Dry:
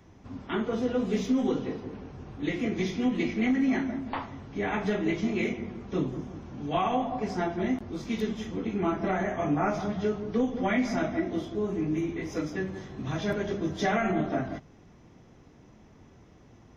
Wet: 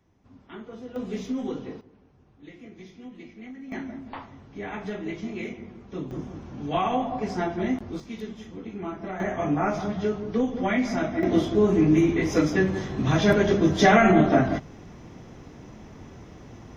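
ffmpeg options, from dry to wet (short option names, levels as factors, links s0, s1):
-af "asetnsamples=n=441:p=0,asendcmd='0.96 volume volume -4dB;1.81 volume volume -16dB;3.72 volume volume -5dB;6.11 volume volume 2dB;8 volume volume -6dB;9.2 volume volume 2dB;11.23 volume volume 10dB',volume=0.266"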